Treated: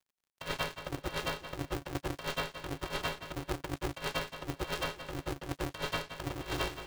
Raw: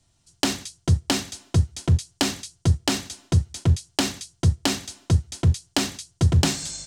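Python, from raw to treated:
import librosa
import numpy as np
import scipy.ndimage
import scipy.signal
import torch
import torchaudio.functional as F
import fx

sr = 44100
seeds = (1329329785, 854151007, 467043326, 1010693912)

y = fx.freq_snap(x, sr, grid_st=3)
y = scipy.signal.sosfilt(scipy.signal.butter(4, 2700.0, 'lowpass', fs=sr, output='sos'), y)
y = y + 0.72 * np.pad(y, (int(5.5 * sr / 1000.0), 0))[:len(y)]
y = np.sign(y) * np.maximum(np.abs(y) - 10.0 ** (-35.0 / 20.0), 0.0)
y = scipy.signal.sosfilt(scipy.signal.butter(4, 59.0, 'highpass', fs=sr, output='sos'), y)
y = fx.dmg_crackle(y, sr, seeds[0], per_s=48.0, level_db=-56.0)
y = fx.echo_feedback(y, sr, ms=174, feedback_pct=29, wet_db=-9.0)
y = fx.over_compress(y, sr, threshold_db=-28.0, ratio=-0.5)
y = y * np.sign(np.sin(2.0 * np.pi * 210.0 * np.arange(len(y)) / sr))
y = F.gain(torch.from_numpy(y), -6.5).numpy()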